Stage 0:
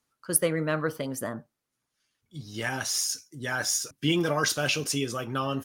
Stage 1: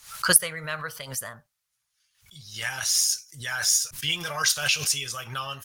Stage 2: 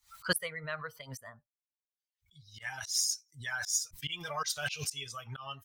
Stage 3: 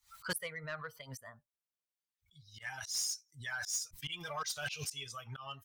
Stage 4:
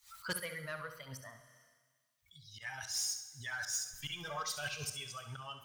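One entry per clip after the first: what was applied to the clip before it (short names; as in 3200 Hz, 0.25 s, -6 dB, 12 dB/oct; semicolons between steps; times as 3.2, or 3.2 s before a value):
passive tone stack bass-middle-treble 10-0-10; backwards sustainer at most 120 dB/s; gain +6.5 dB
per-bin expansion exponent 1.5; auto swell 0.116 s; high shelf 7000 Hz -4.5 dB; gain -2.5 dB
soft clip -27 dBFS, distortion -13 dB; gain -2.5 dB
flutter echo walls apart 11.7 m, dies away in 0.39 s; Schroeder reverb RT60 1.5 s, combs from 31 ms, DRR 12 dB; mismatched tape noise reduction encoder only; gain -1 dB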